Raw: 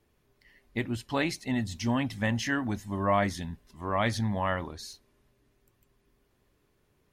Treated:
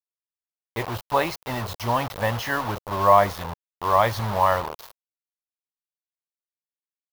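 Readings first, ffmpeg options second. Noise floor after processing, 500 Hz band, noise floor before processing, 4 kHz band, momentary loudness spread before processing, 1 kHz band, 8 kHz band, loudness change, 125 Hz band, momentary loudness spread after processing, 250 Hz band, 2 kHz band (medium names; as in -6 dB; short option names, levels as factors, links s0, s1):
under -85 dBFS, +9.0 dB, -71 dBFS, +4.0 dB, 12 LU, +12.0 dB, +2.0 dB, +7.0 dB, +2.5 dB, 16 LU, -4.0 dB, +3.5 dB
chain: -af "acrusher=bits=5:mix=0:aa=0.000001,equalizer=f=250:t=o:w=1:g=-12,equalizer=f=500:t=o:w=1:g=5,equalizer=f=1000:t=o:w=1:g=9,equalizer=f=2000:t=o:w=1:g=-4,equalizer=f=8000:t=o:w=1:g=-10,volume=1.68"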